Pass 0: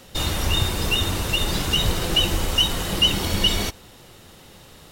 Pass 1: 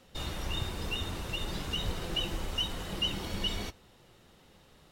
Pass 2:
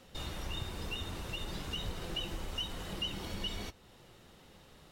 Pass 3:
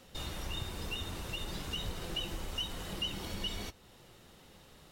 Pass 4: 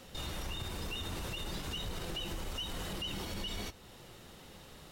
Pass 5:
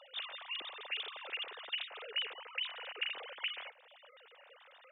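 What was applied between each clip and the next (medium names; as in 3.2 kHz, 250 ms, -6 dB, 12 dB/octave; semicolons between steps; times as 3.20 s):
treble shelf 5.8 kHz -8 dB; flange 1.1 Hz, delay 3.8 ms, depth 2.3 ms, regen -77%; trim -7.5 dB
compression 1.5:1, threshold -48 dBFS, peak gain reduction 8 dB; trim +1.5 dB
treble shelf 5.9 kHz +4.5 dB
peak limiter -35 dBFS, peak gain reduction 10 dB; trim +4.5 dB
formants replaced by sine waves; high-pass 760 Hz 6 dB/octave; in parallel at -2 dB: compressor with a negative ratio -41 dBFS, ratio -0.5; on the sum: trim -5 dB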